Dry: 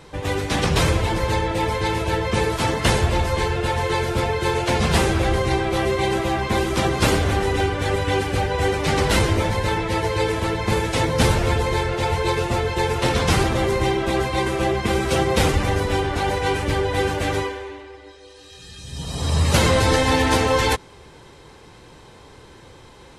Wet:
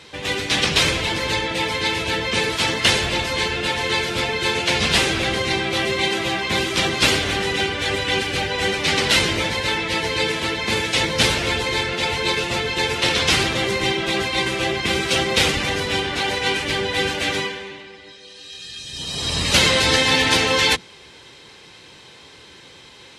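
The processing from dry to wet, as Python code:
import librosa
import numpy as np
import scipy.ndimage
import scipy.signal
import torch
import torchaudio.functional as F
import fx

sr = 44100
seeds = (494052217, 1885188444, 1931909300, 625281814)

y = fx.octave_divider(x, sr, octaves=1, level_db=-1.0)
y = fx.weighting(y, sr, curve='D')
y = y * librosa.db_to_amplitude(-2.5)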